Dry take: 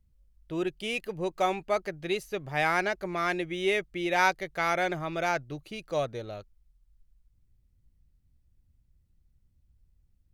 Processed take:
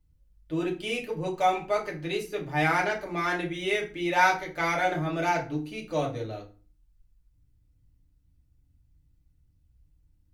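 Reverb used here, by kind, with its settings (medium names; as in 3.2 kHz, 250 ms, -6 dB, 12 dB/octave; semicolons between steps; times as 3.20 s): FDN reverb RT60 0.37 s, low-frequency decay 1.55×, high-frequency decay 0.75×, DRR -2.5 dB; trim -3 dB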